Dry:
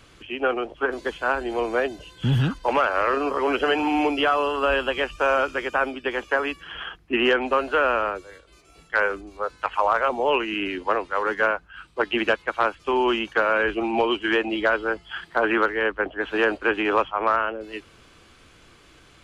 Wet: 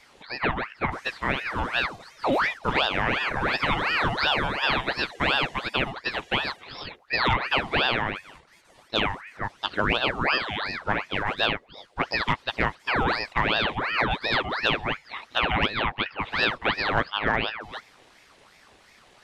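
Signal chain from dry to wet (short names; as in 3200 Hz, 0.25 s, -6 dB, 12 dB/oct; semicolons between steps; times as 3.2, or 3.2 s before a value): ring modulator with a swept carrier 1300 Hz, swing 70%, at 2.8 Hz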